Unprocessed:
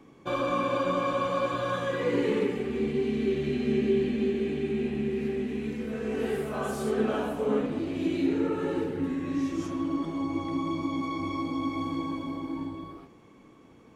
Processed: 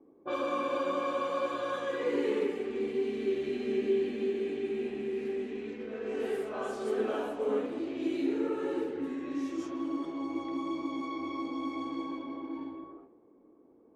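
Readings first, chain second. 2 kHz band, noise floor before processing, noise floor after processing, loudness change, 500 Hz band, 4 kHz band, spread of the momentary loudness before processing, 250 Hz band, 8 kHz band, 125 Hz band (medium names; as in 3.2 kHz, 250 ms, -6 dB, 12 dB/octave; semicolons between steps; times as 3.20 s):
-5.0 dB, -54 dBFS, -60 dBFS, -4.0 dB, -2.5 dB, -5.0 dB, 6 LU, -6.0 dB, no reading, -17.5 dB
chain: level-controlled noise filter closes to 540 Hz, open at -25 dBFS; resonant low shelf 220 Hz -12.5 dB, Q 1.5; trim -5 dB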